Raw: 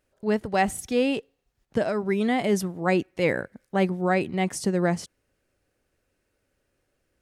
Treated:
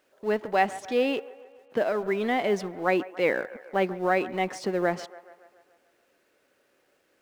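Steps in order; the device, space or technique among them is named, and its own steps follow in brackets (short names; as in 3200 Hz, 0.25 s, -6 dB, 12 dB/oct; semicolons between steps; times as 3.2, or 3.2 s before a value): phone line with mismatched companding (BPF 330–3400 Hz; G.711 law mismatch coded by mu); band-limited delay 0.142 s, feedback 59%, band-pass 940 Hz, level -15.5 dB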